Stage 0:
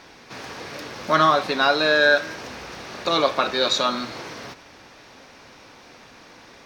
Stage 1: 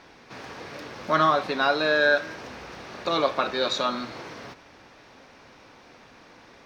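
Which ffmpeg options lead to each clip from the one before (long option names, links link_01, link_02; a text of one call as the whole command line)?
ffmpeg -i in.wav -af "highshelf=frequency=4100:gain=-7.5,volume=-3dB" out.wav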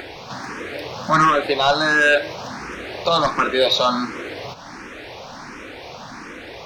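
ffmpeg -i in.wav -filter_complex "[0:a]aeval=exprs='0.422*sin(PI/2*2.24*val(0)/0.422)':channel_layout=same,acompressor=mode=upward:threshold=-24dB:ratio=2.5,asplit=2[link_01][link_02];[link_02]afreqshift=1.4[link_03];[link_01][link_03]amix=inputs=2:normalize=1" out.wav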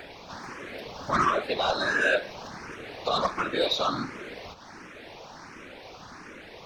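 ffmpeg -i in.wav -af "afftfilt=real='hypot(re,im)*cos(2*PI*random(0))':imag='hypot(re,im)*sin(2*PI*random(1))':win_size=512:overlap=0.75,volume=-3dB" out.wav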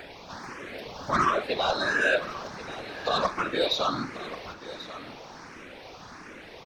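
ffmpeg -i in.wav -af "aecho=1:1:1086:0.178" out.wav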